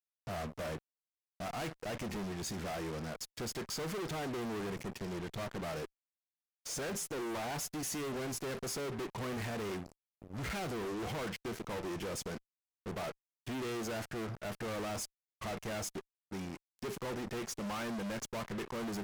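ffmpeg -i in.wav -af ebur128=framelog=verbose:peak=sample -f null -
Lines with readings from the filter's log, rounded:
Integrated loudness:
  I:         -39.9 LUFS
  Threshold: -50.0 LUFS
Loudness range:
  LRA:         2.3 LU
  Threshold: -60.1 LUFS
  LRA low:   -41.1 LUFS
  LRA high:  -38.8 LUFS
Sample peak:
  Peak:      -34.1 dBFS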